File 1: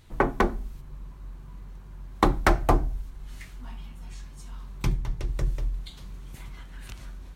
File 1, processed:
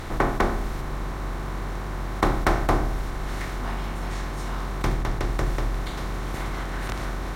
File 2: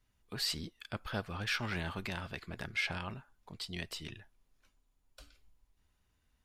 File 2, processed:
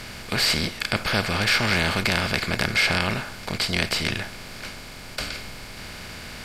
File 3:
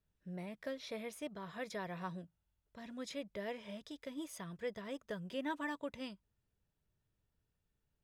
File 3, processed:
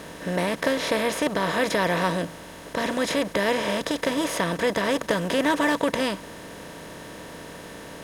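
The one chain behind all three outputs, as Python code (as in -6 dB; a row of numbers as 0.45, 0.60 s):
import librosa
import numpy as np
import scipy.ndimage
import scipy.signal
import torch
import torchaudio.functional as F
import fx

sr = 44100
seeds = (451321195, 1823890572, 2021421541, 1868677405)

y = fx.bin_compress(x, sr, power=0.4)
y = y * 10.0 ** (-26 / 20.0) / np.sqrt(np.mean(np.square(y)))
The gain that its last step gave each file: -4.0, +10.0, +14.0 dB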